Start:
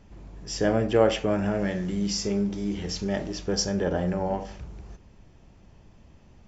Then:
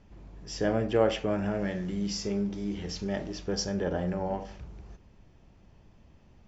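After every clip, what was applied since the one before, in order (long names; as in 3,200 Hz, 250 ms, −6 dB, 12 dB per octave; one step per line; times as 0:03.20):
low-pass filter 6,400 Hz 12 dB per octave
level −4 dB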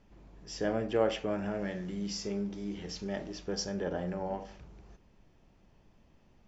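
parametric band 78 Hz −6.5 dB 1.6 octaves
level −3.5 dB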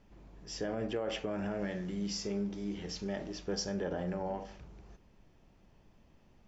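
brickwall limiter −26 dBFS, peak gain reduction 11.5 dB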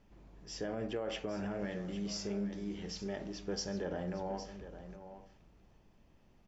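single-tap delay 810 ms −12 dB
level −2.5 dB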